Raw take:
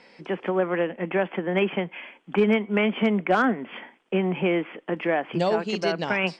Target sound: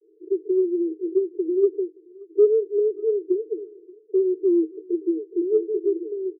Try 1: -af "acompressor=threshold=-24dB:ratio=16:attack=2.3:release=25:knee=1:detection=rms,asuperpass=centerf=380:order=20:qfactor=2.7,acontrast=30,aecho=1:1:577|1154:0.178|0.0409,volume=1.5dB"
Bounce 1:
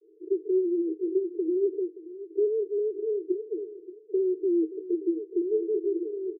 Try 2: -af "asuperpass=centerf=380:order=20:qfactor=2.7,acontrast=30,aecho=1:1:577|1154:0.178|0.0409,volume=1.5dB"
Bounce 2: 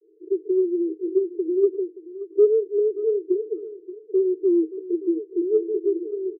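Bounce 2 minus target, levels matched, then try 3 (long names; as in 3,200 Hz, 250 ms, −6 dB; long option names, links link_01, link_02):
echo-to-direct +9 dB
-af "asuperpass=centerf=380:order=20:qfactor=2.7,acontrast=30,aecho=1:1:577|1154:0.0631|0.0145,volume=1.5dB"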